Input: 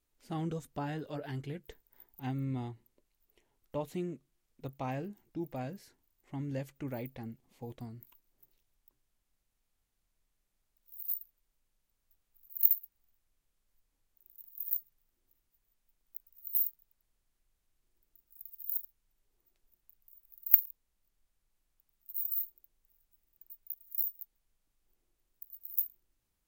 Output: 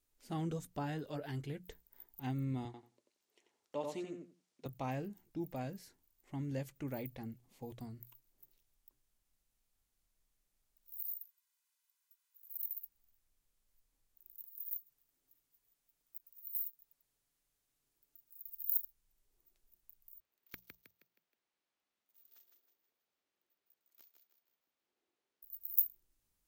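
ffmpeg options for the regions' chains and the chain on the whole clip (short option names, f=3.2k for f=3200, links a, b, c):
-filter_complex "[0:a]asettb=1/sr,asplit=3[a][b][c];[a]atrim=end=2.654[d];[b]atrim=start=2.65:end=4.66,asetpts=PTS-STARTPTS,afade=t=in:d=0.004:c=qsin,afade=t=out:st=2.006:d=0.004:c=qsin,highpass=180,lowpass=6.8k,bass=f=250:g=-7,treble=f=4k:g=4,asplit=2[e][f];[f]adelay=89,lowpass=f=2.7k:p=1,volume=-3.5dB,asplit=2[g][h];[h]adelay=89,lowpass=f=2.7k:p=1,volume=0.18,asplit=2[i][j];[j]adelay=89,lowpass=f=2.7k:p=1,volume=0.18[k];[e][g][i][k]amix=inputs=4:normalize=0,atrim=end_sample=88641[l];[c]atrim=start=4.656[m];[d][l]acrossfade=d=0.004:c1=hsin:c2=qsin[n];[n][m]acrossfade=d=0.004:c1=qsin:c2=hsin,asettb=1/sr,asplit=3[o][p][q];[o]atrim=end=11.064[r];[p]atrim=start=11.06:end=12.77,asetpts=PTS-STARTPTS,afade=t=in:d=0.004:c=qsin,afade=t=out:st=1.706:d=0.004:c=qsin,aecho=1:1:2:0.69,atrim=end_sample=75411,acompressor=threshold=-39dB:ratio=6:attack=3.2:release=140:knee=1:detection=peak,highpass=f=940:w=0.5412,highpass=f=940:w=1.3066[s];[q]atrim=start=12.766[t];[r][s]acrossfade=d=0.004:c1=hsin:c2=qsin[u];[u][t]acrossfade=d=0.004:c1=qsin:c2=hsin,asettb=1/sr,asplit=3[v][w][x];[v]atrim=end=14.444[y];[w]atrim=start=14.44:end=18.46,asetpts=PTS-STARTPTS,afade=t=in:d=0.004:c=qsin,afade=t=out:st=4.016:d=0.004:c=qsin,highpass=f=130:p=1,aecho=1:1:7:0.5,atrim=end_sample=177282,acompressor=threshold=-55dB:ratio=1.5:attack=3.2:release=140:knee=1:detection=peak[z];[x]atrim=start=18.456[aa];[y][z]acrossfade=d=0.004:c1=hsin:c2=qsin[ab];[ab][aa]acrossfade=d=0.004:c1=qsin:c2=hsin,asettb=1/sr,asplit=3[ac][ad][ae];[ac]atrim=end=20.204[af];[ad]atrim=start=20.2:end=25.43,asetpts=PTS-STARTPTS,afade=t=in:d=0.004:c=qsin,afade=t=out:st=5.226:d=0.004:c=qsin,highpass=300,lowpass=3.7k,aeval=exprs='clip(val(0),-1,0.0133)':c=same,asplit=6[ag][ah][ai][aj][ak][al];[ah]adelay=158,afreqshift=39,volume=-6dB[am];[ai]adelay=316,afreqshift=78,volume=-13.3dB[an];[aj]adelay=474,afreqshift=117,volume=-20.7dB[ao];[ak]adelay=632,afreqshift=156,volume=-28dB[ap];[al]adelay=790,afreqshift=195,volume=-35.3dB[aq];[ag][am][an][ao][ap][aq]amix=inputs=6:normalize=0,atrim=end_sample=230643[ar];[ae]atrim=start=25.426[as];[af][ar]acrossfade=d=0.004:c1=hsin:c2=qsin[at];[at][as]acrossfade=d=0.004:c1=qsin:c2=hsin,bass=f=250:g=1,treble=f=4k:g=4,bandreject=f=60:t=h:w=6,bandreject=f=120:t=h:w=6,bandreject=f=180:t=h:w=6,volume=-2.5dB"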